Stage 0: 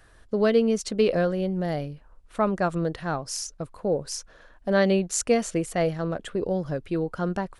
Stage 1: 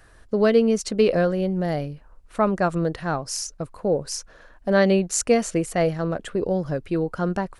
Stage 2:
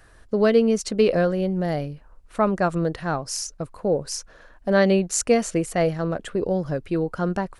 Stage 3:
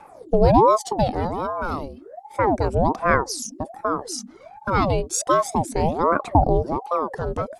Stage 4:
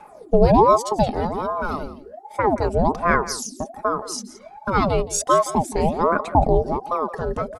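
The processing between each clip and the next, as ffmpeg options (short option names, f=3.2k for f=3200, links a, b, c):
-af "equalizer=f=3.4k:w=4.3:g=-3.5,volume=3dB"
-af anull
-af "equalizer=f=125:t=o:w=1:g=-10,equalizer=f=250:t=o:w=1:g=11,equalizer=f=2k:t=o:w=1:g=-9,aphaser=in_gain=1:out_gain=1:delay=1.4:decay=0.7:speed=0.32:type=triangular,aeval=exprs='val(0)*sin(2*PI*540*n/s+540*0.6/1.3*sin(2*PI*1.3*n/s))':c=same"
-af "aecho=1:1:4.8:0.39,aecho=1:1:171:0.158"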